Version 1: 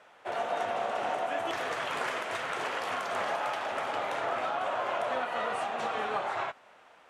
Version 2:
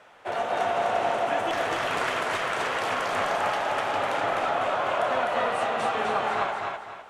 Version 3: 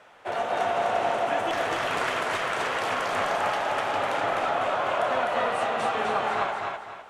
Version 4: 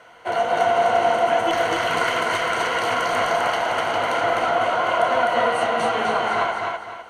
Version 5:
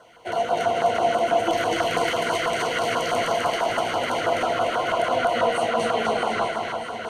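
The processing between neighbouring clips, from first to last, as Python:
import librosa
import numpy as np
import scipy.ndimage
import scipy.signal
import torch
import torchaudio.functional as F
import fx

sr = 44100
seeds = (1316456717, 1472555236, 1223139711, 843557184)

y1 = fx.low_shelf(x, sr, hz=92.0, db=10.5)
y1 = fx.echo_feedback(y1, sr, ms=254, feedback_pct=34, wet_db=-3)
y1 = F.gain(torch.from_numpy(y1), 4.0).numpy()
y2 = y1
y3 = fx.ripple_eq(y2, sr, per_octave=1.9, db=10)
y3 = F.gain(torch.from_numpy(y3), 4.0).numpy()
y4 = fx.echo_alternate(y3, sr, ms=315, hz=1400.0, feedback_pct=82, wet_db=-8.0)
y4 = fx.filter_lfo_notch(y4, sr, shape='saw_down', hz=6.1, low_hz=710.0, high_hz=2400.0, q=0.84)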